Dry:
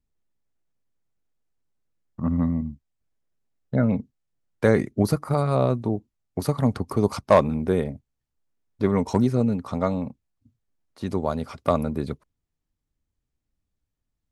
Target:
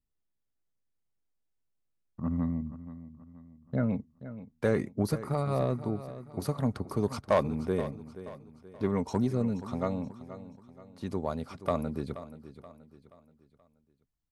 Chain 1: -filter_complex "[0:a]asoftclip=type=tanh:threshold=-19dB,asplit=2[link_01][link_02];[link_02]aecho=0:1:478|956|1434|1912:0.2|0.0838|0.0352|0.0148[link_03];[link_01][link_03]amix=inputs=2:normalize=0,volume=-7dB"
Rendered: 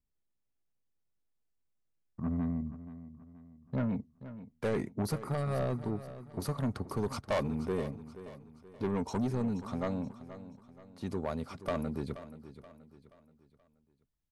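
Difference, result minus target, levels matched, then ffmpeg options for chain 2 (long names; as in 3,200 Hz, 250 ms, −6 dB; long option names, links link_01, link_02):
soft clipping: distortion +13 dB
-filter_complex "[0:a]asoftclip=type=tanh:threshold=-7dB,asplit=2[link_01][link_02];[link_02]aecho=0:1:478|956|1434|1912:0.2|0.0838|0.0352|0.0148[link_03];[link_01][link_03]amix=inputs=2:normalize=0,volume=-7dB"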